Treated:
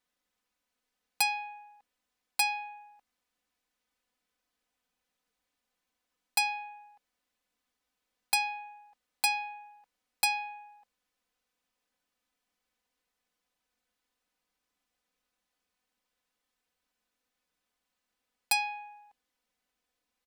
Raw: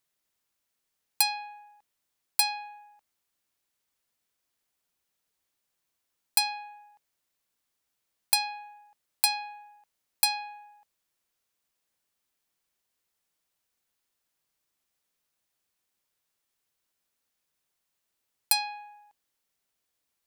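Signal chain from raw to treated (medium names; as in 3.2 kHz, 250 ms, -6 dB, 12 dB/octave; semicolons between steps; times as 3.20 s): low-pass 3.2 kHz 6 dB/octave; comb 4 ms, depth 89%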